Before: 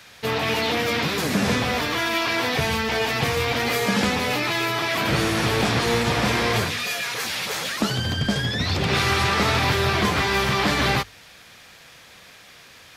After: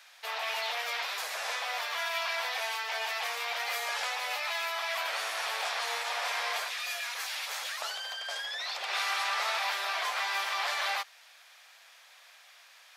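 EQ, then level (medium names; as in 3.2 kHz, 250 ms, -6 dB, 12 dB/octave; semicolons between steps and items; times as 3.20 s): steep high-pass 620 Hz 36 dB/octave; -8.5 dB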